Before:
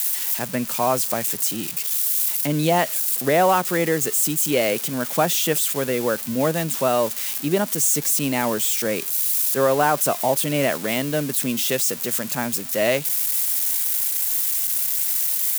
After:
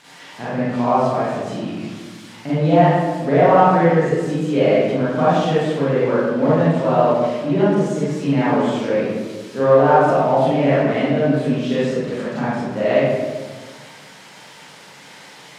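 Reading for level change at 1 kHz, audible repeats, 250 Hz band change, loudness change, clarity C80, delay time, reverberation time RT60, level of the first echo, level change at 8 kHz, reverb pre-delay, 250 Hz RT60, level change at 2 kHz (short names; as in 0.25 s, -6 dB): +6.0 dB, none, +7.5 dB, +2.5 dB, -0.5 dB, none, 1.4 s, none, under -20 dB, 32 ms, 1.8 s, +1.0 dB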